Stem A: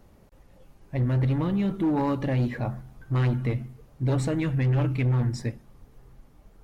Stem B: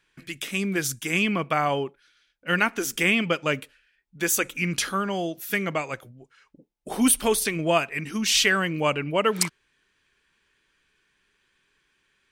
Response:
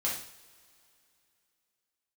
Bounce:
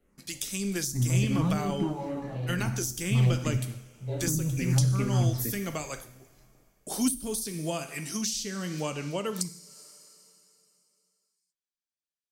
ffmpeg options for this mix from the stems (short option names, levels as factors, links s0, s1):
-filter_complex "[0:a]asplit=2[s0][s1];[s1]afreqshift=-2.4[s2];[s0][s2]amix=inputs=2:normalize=1,volume=0.891,asplit=3[s3][s4][s5];[s4]volume=0.266[s6];[s5]volume=0.211[s7];[1:a]highshelf=f=3600:t=q:w=1.5:g=13.5,agate=range=0.0224:threshold=0.00708:ratio=3:detection=peak,volume=0.447,asplit=3[s8][s9][s10];[s9]volume=0.282[s11];[s10]apad=whole_len=292644[s12];[s3][s12]sidechaingate=range=0.0224:threshold=0.00794:ratio=16:detection=peak[s13];[2:a]atrim=start_sample=2205[s14];[s6][s11]amix=inputs=2:normalize=0[s15];[s15][s14]afir=irnorm=-1:irlink=0[s16];[s7]aecho=0:1:212:1[s17];[s13][s8][s16][s17]amix=inputs=4:normalize=0,acrossover=split=340[s18][s19];[s19]acompressor=threshold=0.0282:ratio=10[s20];[s18][s20]amix=inputs=2:normalize=0"